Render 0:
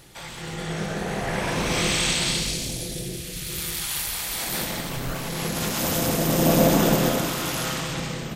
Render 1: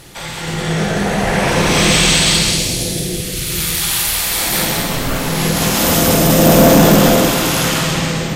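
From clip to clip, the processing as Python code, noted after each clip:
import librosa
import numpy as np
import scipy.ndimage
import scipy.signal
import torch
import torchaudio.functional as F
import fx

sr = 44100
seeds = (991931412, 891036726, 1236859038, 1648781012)

y = fx.echo_multitap(x, sr, ms=(50, 187), db=(-5.0, -6.0))
y = fx.fold_sine(y, sr, drive_db=6, ceiling_db=-3.0)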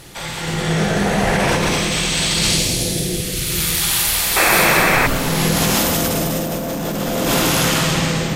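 y = fx.over_compress(x, sr, threshold_db=-15.0, ratio=-1.0)
y = fx.spec_paint(y, sr, seeds[0], shape='noise', start_s=4.36, length_s=0.71, low_hz=310.0, high_hz=2700.0, level_db=-13.0)
y = F.gain(torch.from_numpy(y), -2.5).numpy()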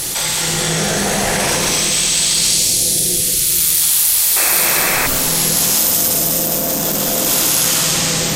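y = fx.bass_treble(x, sr, bass_db=-4, treble_db=14)
y = fx.env_flatten(y, sr, amount_pct=70)
y = F.gain(torch.from_numpy(y), -8.5).numpy()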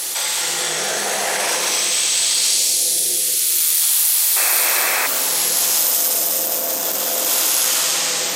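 y = scipy.signal.sosfilt(scipy.signal.butter(2, 490.0, 'highpass', fs=sr, output='sos'), x)
y = F.gain(torch.from_numpy(y), -2.5).numpy()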